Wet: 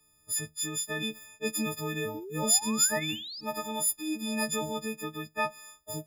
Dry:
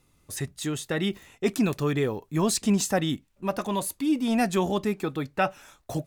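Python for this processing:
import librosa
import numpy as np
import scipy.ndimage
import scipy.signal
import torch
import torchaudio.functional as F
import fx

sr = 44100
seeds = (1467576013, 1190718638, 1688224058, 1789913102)

y = fx.freq_snap(x, sr, grid_st=6)
y = fx.spec_paint(y, sr, seeds[0], shape='rise', start_s=2.14, length_s=1.27, low_hz=290.0, high_hz=5300.0, level_db=-32.0)
y = fx.room_flutter(y, sr, wall_m=11.5, rt60_s=0.26, at=(3.08, 3.69), fade=0.02)
y = F.gain(torch.from_numpy(y), -9.0).numpy()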